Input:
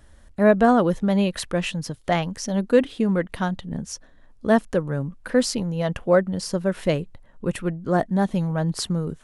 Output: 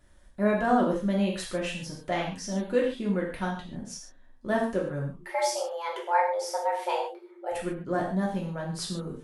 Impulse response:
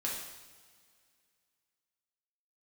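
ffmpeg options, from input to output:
-filter_complex "[0:a]asettb=1/sr,asplit=3[link_01][link_02][link_03];[link_01]atrim=end=5.184[link_04];[link_02]atrim=start=5.18:end=7.52,asetpts=PTS-STARTPTS,afade=type=in:duration=0.004:curve=qsin,afade=type=out:start_time=2.336:duration=0.004:curve=qsin,afreqshift=340[link_05];[link_03]atrim=start=7.516[link_06];[link_04][link_05]acrossfade=duration=0.004:curve1=hsin:curve2=qsin[link_07];[link_07][link_06]acrossfade=duration=0.004:curve1=qsin:curve2=hsin[link_08];[1:a]atrim=start_sample=2205,afade=type=out:start_time=0.27:duration=0.01,atrim=end_sample=12348,asetrate=61740,aresample=44100[link_09];[link_08][link_09]afir=irnorm=-1:irlink=0,volume=-5.5dB"

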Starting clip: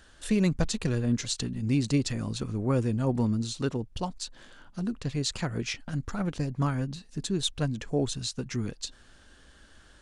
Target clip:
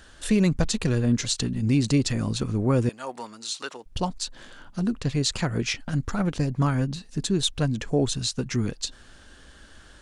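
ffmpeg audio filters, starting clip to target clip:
ffmpeg -i in.wav -filter_complex "[0:a]asettb=1/sr,asplit=3[link_01][link_02][link_03];[link_01]atrim=end=2.894[link_04];[link_02]atrim=start=2.89:end=3.86,asetpts=PTS-STARTPTS,afade=type=in:duration=0.004:curve=qsin,afade=type=out:start_time=0.966:duration=0.004:curve=qsin,highpass=890[link_05];[link_03]atrim=start=3.856[link_06];[link_04][link_05]acrossfade=duration=0.004:curve1=hsin:curve2=qsin[link_07];[link_07][link_06]acrossfade=duration=0.004:curve1=qsin:curve2=hsin,asplit=2[link_08][link_09];[link_09]alimiter=limit=-20.5dB:level=0:latency=1:release=97,volume=-0.5dB[link_10];[link_08][link_10]amix=inputs=2:normalize=0" out.wav

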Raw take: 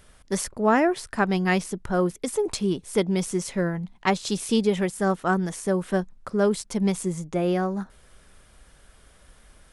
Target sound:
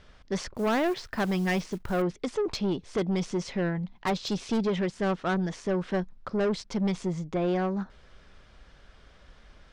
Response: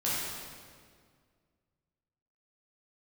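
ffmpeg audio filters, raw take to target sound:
-filter_complex "[0:a]lowpass=frequency=5400:width=0.5412,lowpass=frequency=5400:width=1.3066,asettb=1/sr,asplit=3[link_01][link_02][link_03];[link_01]atrim=end=0.554[link_04];[link_02]atrim=start=0.55:end=2.02,asetpts=PTS-STARTPTS,afade=type=in:duration=0.004:curve=qsin,afade=type=out:start_time=1.466:duration=0.004:curve=qsin,acrusher=bits=5:mode=log:mix=0:aa=0.000001[link_05];[link_03]atrim=start=2.016[link_06];[link_04][link_05]acrossfade=duration=0.004:curve1=hsin:curve2=qsin[link_07];[link_07][link_06]acrossfade=duration=0.004:curve1=qsin:curve2=hsin,asoftclip=type=tanh:threshold=-22dB"

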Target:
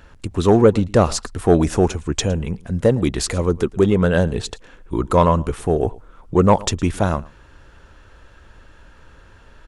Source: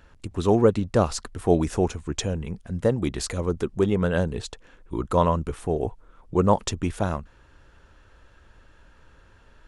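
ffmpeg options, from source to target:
ffmpeg -i in.wav -af "aecho=1:1:112:0.0708,acontrast=86" out.wav

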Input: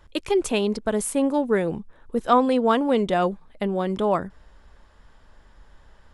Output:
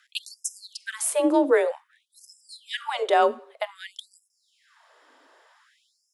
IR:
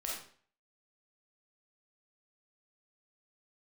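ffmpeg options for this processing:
-filter_complex "[0:a]bandreject=frequency=50:width_type=h:width=6,bandreject=frequency=100:width_type=h:width=6,bandreject=frequency=150:width_type=h:width=6,bandreject=frequency=200:width_type=h:width=6,afreqshift=34,asplit=2[link_01][link_02];[1:a]atrim=start_sample=2205[link_03];[link_02][link_03]afir=irnorm=-1:irlink=0,volume=-17dB[link_04];[link_01][link_04]amix=inputs=2:normalize=0,afftfilt=real='re*gte(b*sr/1024,240*pow(5100/240,0.5+0.5*sin(2*PI*0.53*pts/sr)))':imag='im*gte(b*sr/1024,240*pow(5100/240,0.5+0.5*sin(2*PI*0.53*pts/sr)))':win_size=1024:overlap=0.75,volume=2dB"

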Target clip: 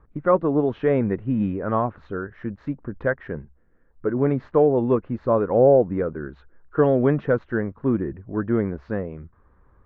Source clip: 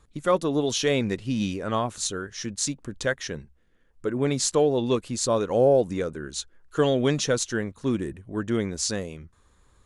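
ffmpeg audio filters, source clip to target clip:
ffmpeg -i in.wav -af "lowpass=frequency=1700:width=0.5412,lowpass=frequency=1700:width=1.3066,aemphasis=mode=reproduction:type=50fm,volume=3.5dB" out.wav

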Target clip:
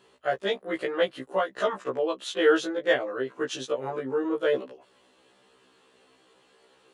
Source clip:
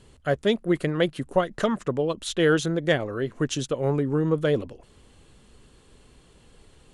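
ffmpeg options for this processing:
ffmpeg -i in.wav -af "highpass=430,equalizer=frequency=9900:width=0.54:gain=-10.5,bandreject=frequency=2200:width=26,afftfilt=real='re*1.73*eq(mod(b,3),0)':imag='im*1.73*eq(mod(b,3),0)':win_size=2048:overlap=0.75,volume=3.5dB" out.wav

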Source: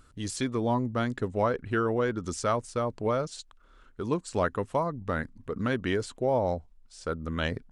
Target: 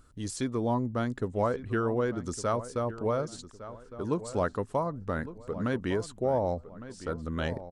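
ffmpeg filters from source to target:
ffmpeg -i in.wav -filter_complex "[0:a]equalizer=frequency=2600:width=0.79:gain=-5.5,asplit=2[link_01][link_02];[link_02]adelay=1158,lowpass=frequency=2700:poles=1,volume=-14dB,asplit=2[link_03][link_04];[link_04]adelay=1158,lowpass=frequency=2700:poles=1,volume=0.36,asplit=2[link_05][link_06];[link_06]adelay=1158,lowpass=frequency=2700:poles=1,volume=0.36[link_07];[link_03][link_05][link_07]amix=inputs=3:normalize=0[link_08];[link_01][link_08]amix=inputs=2:normalize=0,volume=-1dB" out.wav

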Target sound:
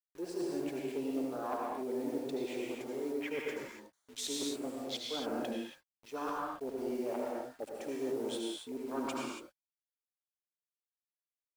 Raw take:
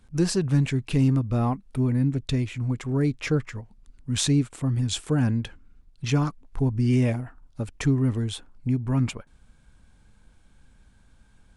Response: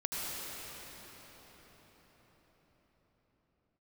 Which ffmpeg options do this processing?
-filter_complex "[0:a]afwtdn=0.0251,highpass=frequency=410:width=0.5412,highpass=frequency=410:width=1.3066,areverse,acompressor=threshold=-45dB:ratio=8,areverse,acrusher=bits=10:mix=0:aa=0.000001,asplit=2[link_01][link_02];[link_02]aeval=exprs='0.01*(abs(mod(val(0)/0.01+3,4)-2)-1)':channel_layout=same,volume=-5.5dB[link_03];[link_01][link_03]amix=inputs=2:normalize=0[link_04];[1:a]atrim=start_sample=2205,afade=type=out:start_time=0.34:duration=0.01,atrim=end_sample=15435[link_05];[link_04][link_05]afir=irnorm=-1:irlink=0,volume=5.5dB"

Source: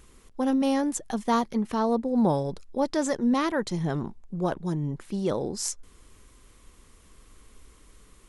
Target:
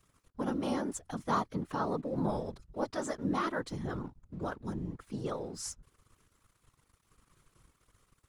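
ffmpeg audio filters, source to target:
ffmpeg -i in.wav -af "equalizer=frequency=1300:width=2.8:gain=8,aeval=exprs='sgn(val(0))*max(abs(val(0))-0.002,0)':channel_layout=same,afftfilt=real='hypot(re,im)*cos(2*PI*random(0))':imag='hypot(re,im)*sin(2*PI*random(1))':win_size=512:overlap=0.75,volume=-3dB" out.wav

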